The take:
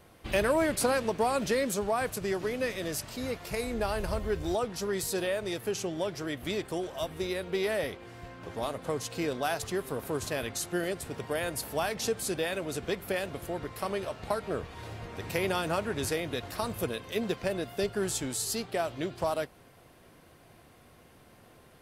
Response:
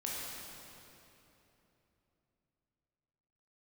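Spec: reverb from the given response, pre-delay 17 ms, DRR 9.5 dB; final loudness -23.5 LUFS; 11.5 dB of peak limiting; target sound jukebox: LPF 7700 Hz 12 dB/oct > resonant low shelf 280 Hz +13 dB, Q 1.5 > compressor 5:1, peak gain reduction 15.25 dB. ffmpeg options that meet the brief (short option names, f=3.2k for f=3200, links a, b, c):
-filter_complex "[0:a]alimiter=level_in=2dB:limit=-24dB:level=0:latency=1,volume=-2dB,asplit=2[a][b];[1:a]atrim=start_sample=2205,adelay=17[c];[b][c]afir=irnorm=-1:irlink=0,volume=-12dB[d];[a][d]amix=inputs=2:normalize=0,lowpass=7.7k,lowshelf=f=280:t=q:w=1.5:g=13,acompressor=threshold=-36dB:ratio=5,volume=16dB"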